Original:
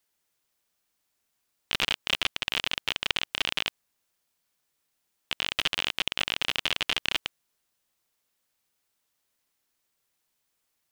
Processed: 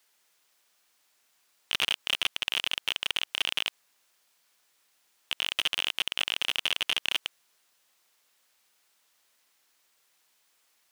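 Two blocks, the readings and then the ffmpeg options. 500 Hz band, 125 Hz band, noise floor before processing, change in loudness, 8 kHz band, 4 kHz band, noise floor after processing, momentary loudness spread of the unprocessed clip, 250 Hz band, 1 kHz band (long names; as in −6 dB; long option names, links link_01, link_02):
−4.5 dB, can't be measured, −78 dBFS, −0.5 dB, +0.5 dB, 0.0 dB, −72 dBFS, 5 LU, −7.5 dB, −3.5 dB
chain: -filter_complex "[0:a]asplit=2[link_01][link_02];[link_02]highpass=frequency=720:poles=1,volume=19dB,asoftclip=type=tanh:threshold=-3.5dB[link_03];[link_01][link_03]amix=inputs=2:normalize=0,lowpass=frequency=7900:poles=1,volume=-6dB,alimiter=limit=-10.5dB:level=0:latency=1:release=58,volume=-2.5dB"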